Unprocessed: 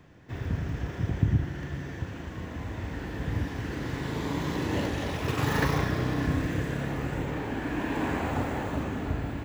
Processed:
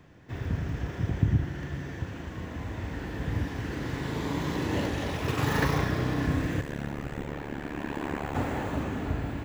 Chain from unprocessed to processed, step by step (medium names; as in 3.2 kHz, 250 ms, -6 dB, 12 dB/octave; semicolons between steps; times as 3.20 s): 6.61–8.35 s: AM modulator 72 Hz, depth 95%